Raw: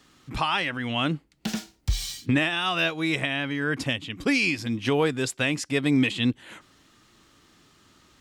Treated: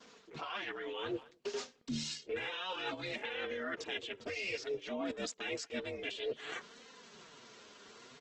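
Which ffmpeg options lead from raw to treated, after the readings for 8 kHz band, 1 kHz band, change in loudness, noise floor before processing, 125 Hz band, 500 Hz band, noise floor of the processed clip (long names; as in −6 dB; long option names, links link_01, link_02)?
−11.0 dB, −13.5 dB, −14.0 dB, −62 dBFS, −23.5 dB, −9.0 dB, −64 dBFS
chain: -filter_complex "[0:a]aecho=1:1:4.3:0.66,aresample=16000,aresample=44100,aeval=exprs='val(0)*sin(2*PI*190*n/s)':channel_layout=same,asplit=2[link_01][link_02];[link_02]alimiter=limit=-18.5dB:level=0:latency=1:release=197,volume=-0.5dB[link_03];[link_01][link_03]amix=inputs=2:normalize=0,adynamicequalizer=threshold=0.01:dfrequency=2300:dqfactor=6:tfrequency=2300:tqfactor=6:attack=5:release=100:ratio=0.375:range=2:mode=cutabove:tftype=bell,highpass=frequency=160:width=0.5412,highpass=frequency=160:width=1.3066,asplit=2[link_04][link_05];[link_05]adelay=220,highpass=300,lowpass=3400,asoftclip=type=hard:threshold=-15.5dB,volume=-29dB[link_06];[link_04][link_06]amix=inputs=2:normalize=0,areverse,acompressor=threshold=-36dB:ratio=8,areverse,flanger=delay=3.8:depth=6.1:regen=-7:speed=0.58:shape=sinusoidal,volume=2dB" -ar 48000 -c:a libopus -b:a 16k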